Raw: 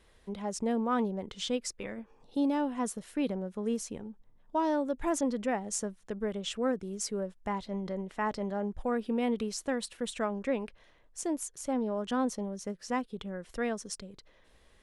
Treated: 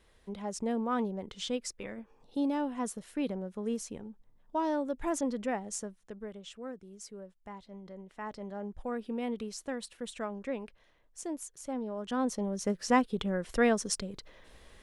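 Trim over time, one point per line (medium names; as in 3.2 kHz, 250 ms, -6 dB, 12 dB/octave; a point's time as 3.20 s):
5.56 s -2 dB
6.56 s -12 dB
7.81 s -12 dB
8.76 s -5 dB
11.95 s -5 dB
12.73 s +7 dB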